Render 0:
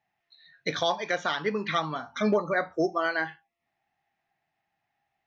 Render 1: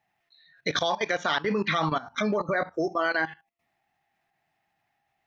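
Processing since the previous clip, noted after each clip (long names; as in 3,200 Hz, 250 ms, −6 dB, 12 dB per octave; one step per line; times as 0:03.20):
output level in coarse steps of 17 dB
level +9 dB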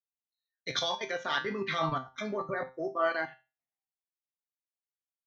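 tuned comb filter 130 Hz, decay 0.35 s, harmonics all, mix 80%
multiband upward and downward expander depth 100%
level +2.5 dB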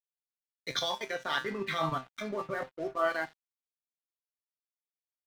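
dead-zone distortion −48.5 dBFS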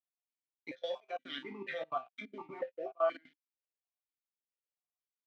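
gate pattern "x.xxxxxxx.xx." 180 BPM −24 dB
formant filter that steps through the vowels 4.2 Hz
level +5.5 dB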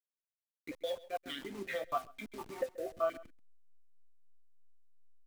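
hold until the input has moved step −48.5 dBFS
single-tap delay 133 ms −19 dB
rotating-speaker cabinet horn 7.5 Hz, later 0.7 Hz, at 0:01.42
level +3.5 dB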